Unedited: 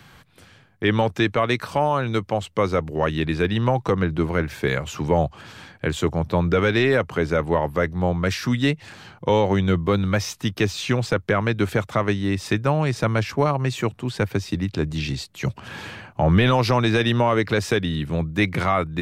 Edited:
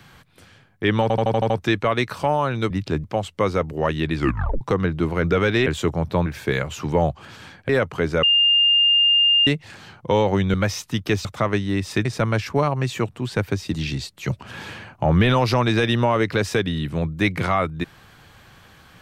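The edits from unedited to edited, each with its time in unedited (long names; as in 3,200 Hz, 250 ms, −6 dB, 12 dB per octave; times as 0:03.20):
0:01.02: stutter 0.08 s, 7 plays
0:03.34: tape stop 0.45 s
0:04.42–0:05.85: swap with 0:06.45–0:06.87
0:07.41–0:08.65: beep over 2,810 Hz −13 dBFS
0:09.72–0:10.05: remove
0:10.76–0:11.80: remove
0:12.60–0:12.88: remove
0:14.57–0:14.91: move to 0:02.22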